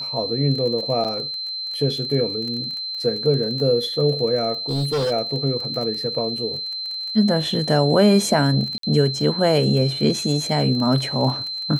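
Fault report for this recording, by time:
crackle 23/s -28 dBFS
tone 4100 Hz -26 dBFS
1.04–1.05 gap 7.4 ms
4.69–5.12 clipped -18.5 dBFS
8.78–8.83 gap 53 ms

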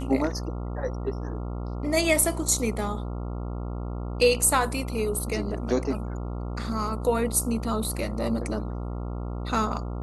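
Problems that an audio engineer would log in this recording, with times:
buzz 60 Hz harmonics 23 -32 dBFS

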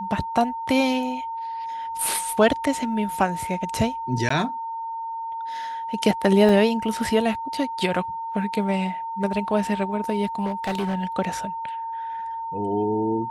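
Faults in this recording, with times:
tone 910 Hz -28 dBFS
4.29–4.3 gap 14 ms
6.49 gap 2.5 ms
10.45–10.96 clipped -21.5 dBFS

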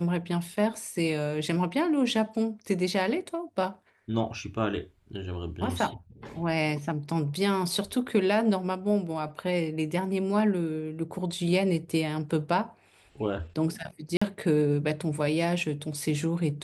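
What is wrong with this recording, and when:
14.17–14.21 gap 45 ms

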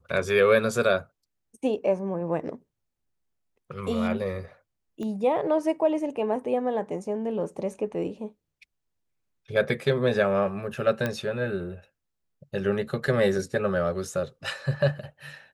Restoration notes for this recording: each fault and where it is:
5.03 pop -25 dBFS
11.06 pop -14 dBFS

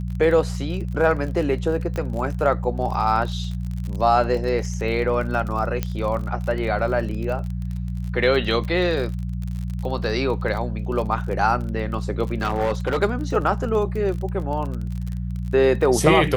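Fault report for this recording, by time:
crackle 36/s -29 dBFS
hum 60 Hz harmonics 3 -27 dBFS
1.96 pop -15 dBFS
5.83 pop -10 dBFS
12.41–12.99 clipped -17 dBFS

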